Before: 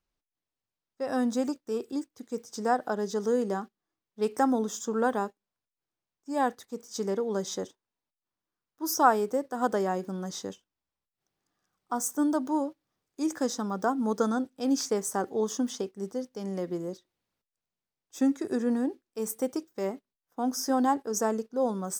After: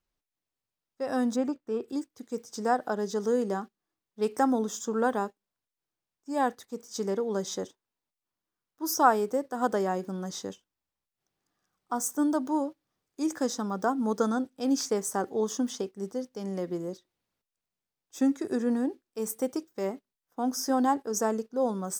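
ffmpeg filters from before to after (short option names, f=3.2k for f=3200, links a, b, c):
-filter_complex "[0:a]asettb=1/sr,asplit=3[a][b][c];[a]atrim=end=1.364[d];[b]atrim=start=1.36:end=1.88,asetpts=PTS-STARTPTS,afade=t=in:d=0.004:c=qsin,afade=t=out:st=0.516:d=0.004:c=qsin,bass=f=250:g=1,treble=f=4k:g=-14[e];[c]atrim=start=1.876[f];[d][e]acrossfade=d=0.004:c1=hsin:c2=qsin[g];[g][f]acrossfade=d=0.004:c1=qsin:c2=hsin"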